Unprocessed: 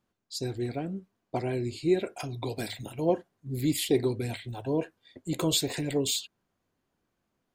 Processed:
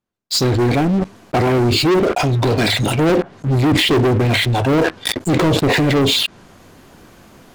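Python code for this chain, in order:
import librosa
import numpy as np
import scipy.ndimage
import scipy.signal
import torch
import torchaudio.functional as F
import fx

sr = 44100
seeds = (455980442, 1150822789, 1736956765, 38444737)

y = fx.env_lowpass_down(x, sr, base_hz=580.0, full_db=-21.5)
y = fx.leveller(y, sr, passes=5)
y = fx.sustainer(y, sr, db_per_s=21.0)
y = y * librosa.db_to_amplitude(4.5)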